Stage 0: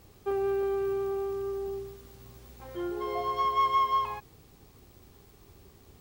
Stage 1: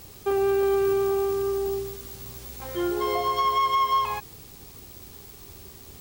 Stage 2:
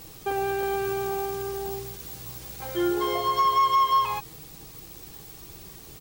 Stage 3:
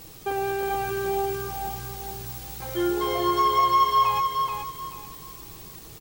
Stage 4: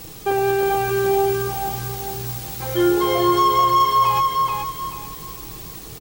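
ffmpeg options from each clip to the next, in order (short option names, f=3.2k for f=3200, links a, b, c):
-af "alimiter=level_in=0.5dB:limit=-24dB:level=0:latency=1:release=226,volume=-0.5dB,highshelf=f=3k:g=10,volume=7dB"
-af "aecho=1:1:6.3:0.56"
-af "aecho=1:1:433|866|1299|1732:0.596|0.167|0.0467|0.0131"
-filter_complex "[0:a]acrossover=split=700|5300[a][b][c];[a]asplit=2[d][e];[e]adelay=25,volume=-7dB[f];[d][f]amix=inputs=2:normalize=0[g];[b]asoftclip=type=tanh:threshold=-22.5dB[h];[g][h][c]amix=inputs=3:normalize=0,volume=7dB"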